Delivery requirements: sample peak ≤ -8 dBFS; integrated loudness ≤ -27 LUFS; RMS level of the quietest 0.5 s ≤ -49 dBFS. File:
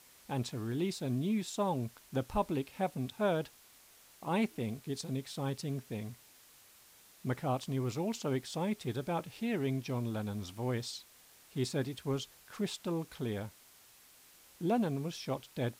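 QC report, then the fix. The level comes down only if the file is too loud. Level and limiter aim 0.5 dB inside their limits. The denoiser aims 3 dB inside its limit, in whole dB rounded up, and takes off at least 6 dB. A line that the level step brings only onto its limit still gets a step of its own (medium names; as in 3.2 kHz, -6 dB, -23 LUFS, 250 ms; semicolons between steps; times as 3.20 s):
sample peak -18.5 dBFS: pass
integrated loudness -36.5 LUFS: pass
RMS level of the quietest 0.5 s -61 dBFS: pass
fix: none needed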